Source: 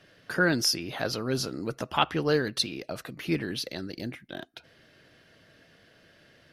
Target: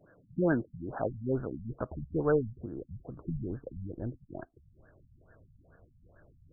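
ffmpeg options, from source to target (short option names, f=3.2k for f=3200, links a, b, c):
-af "asubboost=boost=8.5:cutoff=69,afftfilt=real='re*lt(b*sr/1024,200*pow(1800/200,0.5+0.5*sin(2*PI*2.3*pts/sr)))':imag='im*lt(b*sr/1024,200*pow(1800/200,0.5+0.5*sin(2*PI*2.3*pts/sr)))':win_size=1024:overlap=0.75"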